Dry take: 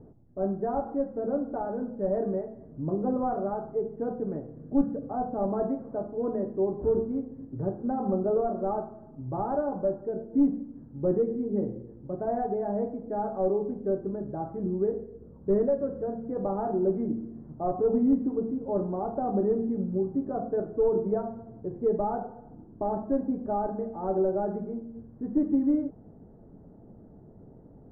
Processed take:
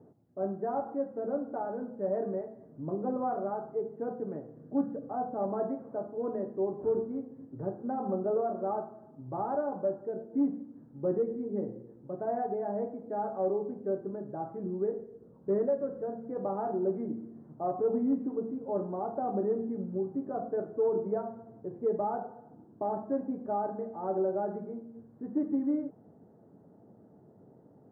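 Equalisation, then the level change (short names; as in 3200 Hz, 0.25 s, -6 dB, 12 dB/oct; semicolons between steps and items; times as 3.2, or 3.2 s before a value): HPF 100 Hz 24 dB/oct; low shelf 330 Hz -7.5 dB; -1.0 dB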